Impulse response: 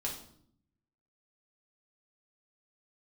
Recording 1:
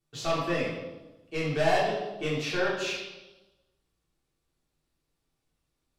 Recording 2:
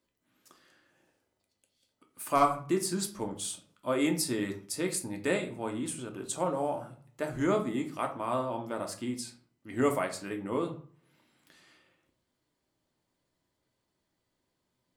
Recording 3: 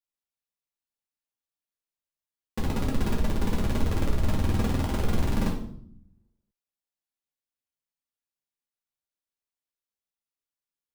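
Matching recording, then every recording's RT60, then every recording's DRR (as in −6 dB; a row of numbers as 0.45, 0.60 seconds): 3; 1.1, 0.45, 0.65 seconds; −7.5, 2.5, −2.5 decibels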